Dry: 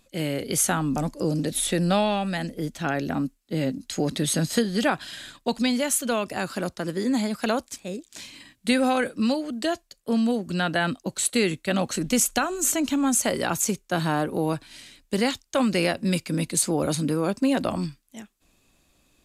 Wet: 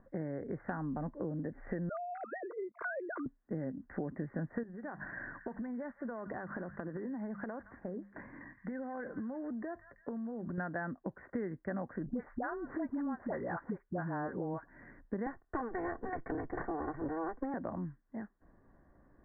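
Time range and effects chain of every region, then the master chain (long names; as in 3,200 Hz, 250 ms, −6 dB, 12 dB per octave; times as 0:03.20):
0:01.89–0:03.26: three sine waves on the formant tracks + spectral tilt +4 dB per octave + phaser with its sweep stopped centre 1,200 Hz, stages 8
0:04.63–0:10.58: mains-hum notches 50/100/150/200 Hz + downward compressor 12 to 1, threshold −33 dBFS + echo through a band-pass that steps 168 ms, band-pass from 1,500 Hz, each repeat 0.7 octaves, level −12 dB
0:12.06–0:14.70: running median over 3 samples + all-pass dispersion highs, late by 74 ms, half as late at 630 Hz
0:15.26–0:17.54: lower of the sound and its delayed copy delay 2.7 ms + parametric band 960 Hz +3 dB 2.8 octaves + multiband upward and downward compressor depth 70%
whole clip: Butterworth low-pass 1,900 Hz 96 dB per octave; notch filter 1,300 Hz, Q 11; downward compressor 4 to 1, threshold −40 dBFS; level +2 dB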